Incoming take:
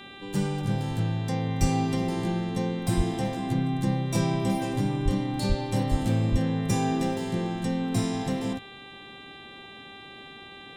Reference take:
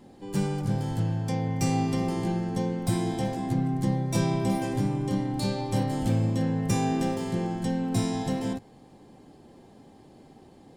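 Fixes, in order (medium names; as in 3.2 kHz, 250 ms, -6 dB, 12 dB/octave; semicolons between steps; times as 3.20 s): de-hum 393.9 Hz, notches 10; de-plosive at 1.60/2.96/5.04/5.48/5.90/6.31 s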